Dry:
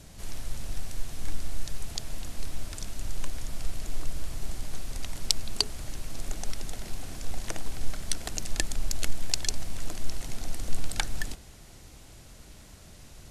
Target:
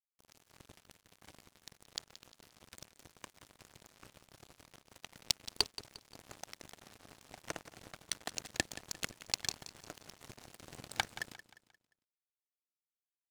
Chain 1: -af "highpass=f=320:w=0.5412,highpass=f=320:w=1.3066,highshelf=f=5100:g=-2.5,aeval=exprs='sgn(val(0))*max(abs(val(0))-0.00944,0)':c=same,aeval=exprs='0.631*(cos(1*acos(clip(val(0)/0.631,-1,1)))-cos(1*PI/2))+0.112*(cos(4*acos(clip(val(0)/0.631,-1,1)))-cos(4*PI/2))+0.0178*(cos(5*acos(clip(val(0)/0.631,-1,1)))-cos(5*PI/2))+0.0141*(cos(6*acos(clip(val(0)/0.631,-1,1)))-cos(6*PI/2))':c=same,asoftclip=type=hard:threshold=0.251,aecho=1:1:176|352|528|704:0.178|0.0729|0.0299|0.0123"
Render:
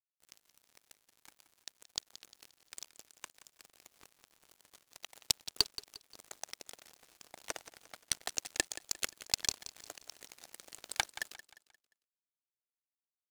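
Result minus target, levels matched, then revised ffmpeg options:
125 Hz band -7.0 dB; 8 kHz band +2.0 dB
-af "highpass=f=94:w=0.5412,highpass=f=94:w=1.3066,highshelf=f=5100:g=-10.5,aeval=exprs='sgn(val(0))*max(abs(val(0))-0.00944,0)':c=same,aeval=exprs='0.631*(cos(1*acos(clip(val(0)/0.631,-1,1)))-cos(1*PI/2))+0.112*(cos(4*acos(clip(val(0)/0.631,-1,1)))-cos(4*PI/2))+0.0178*(cos(5*acos(clip(val(0)/0.631,-1,1)))-cos(5*PI/2))+0.0141*(cos(6*acos(clip(val(0)/0.631,-1,1)))-cos(6*PI/2))':c=same,asoftclip=type=hard:threshold=0.251,aecho=1:1:176|352|528|704:0.178|0.0729|0.0299|0.0123"

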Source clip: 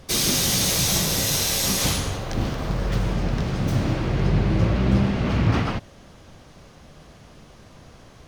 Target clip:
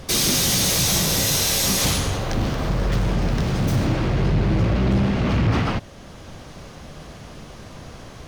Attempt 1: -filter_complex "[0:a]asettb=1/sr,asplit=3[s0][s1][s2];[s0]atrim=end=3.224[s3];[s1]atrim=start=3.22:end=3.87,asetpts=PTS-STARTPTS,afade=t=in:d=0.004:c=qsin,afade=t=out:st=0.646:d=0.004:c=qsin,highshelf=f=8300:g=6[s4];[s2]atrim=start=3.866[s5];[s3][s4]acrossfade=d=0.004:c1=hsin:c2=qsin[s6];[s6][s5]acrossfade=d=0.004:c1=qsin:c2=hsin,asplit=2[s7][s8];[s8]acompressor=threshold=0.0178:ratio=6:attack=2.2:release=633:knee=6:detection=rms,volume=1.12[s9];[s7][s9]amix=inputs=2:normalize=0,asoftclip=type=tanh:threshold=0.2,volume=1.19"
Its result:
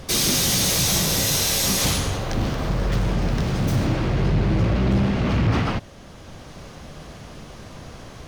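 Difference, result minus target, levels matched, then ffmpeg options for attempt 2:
compression: peak gain reduction +6 dB
-filter_complex "[0:a]asettb=1/sr,asplit=3[s0][s1][s2];[s0]atrim=end=3.224[s3];[s1]atrim=start=3.22:end=3.87,asetpts=PTS-STARTPTS,afade=t=in:d=0.004:c=qsin,afade=t=out:st=0.646:d=0.004:c=qsin,highshelf=f=8300:g=6[s4];[s2]atrim=start=3.866[s5];[s3][s4]acrossfade=d=0.004:c1=hsin:c2=qsin[s6];[s6][s5]acrossfade=d=0.004:c1=qsin:c2=hsin,asplit=2[s7][s8];[s8]acompressor=threshold=0.0398:ratio=6:attack=2.2:release=633:knee=6:detection=rms,volume=1.12[s9];[s7][s9]amix=inputs=2:normalize=0,asoftclip=type=tanh:threshold=0.2,volume=1.19"

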